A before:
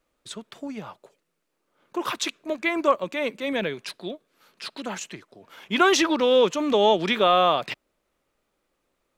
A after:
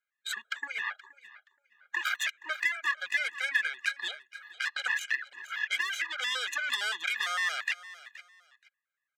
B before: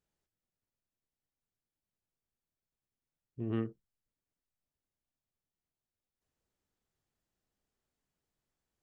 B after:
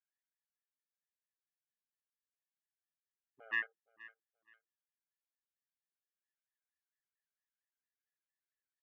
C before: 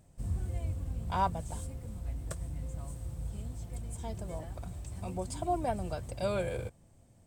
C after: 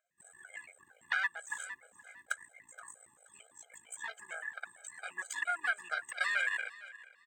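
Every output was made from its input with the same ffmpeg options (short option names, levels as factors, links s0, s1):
-filter_complex "[0:a]acrossover=split=2200|5400[s0][s1][s2];[s0]acompressor=threshold=0.0178:ratio=4[s3];[s1]acompressor=threshold=0.00708:ratio=4[s4];[s2]acompressor=threshold=0.00398:ratio=4[s5];[s3][s4][s5]amix=inputs=3:normalize=0,afftdn=nr=22:nf=-59,superequalizer=14b=0.316:16b=0.282,aeval=exprs='0.0944*(cos(1*acos(clip(val(0)/0.0944,-1,1)))-cos(1*PI/2))+0.0299*(cos(2*acos(clip(val(0)/0.0944,-1,1)))-cos(2*PI/2))+0.00106*(cos(3*acos(clip(val(0)/0.0944,-1,1)))-cos(3*PI/2))+0.0376*(cos(4*acos(clip(val(0)/0.0944,-1,1)))-cos(4*PI/2))+0.0335*(cos(6*acos(clip(val(0)/0.0944,-1,1)))-cos(6*PI/2))':c=same,highpass=f=1700:t=q:w=9.8,aecho=1:1:474|948:0.106|0.0244,acompressor=threshold=0.0251:ratio=4,afftfilt=real='re*gt(sin(2*PI*4.4*pts/sr)*(1-2*mod(floor(b*sr/1024/410),2)),0)':imag='im*gt(sin(2*PI*4.4*pts/sr)*(1-2*mod(floor(b*sr/1024/410),2)),0)':win_size=1024:overlap=0.75,volume=2.51"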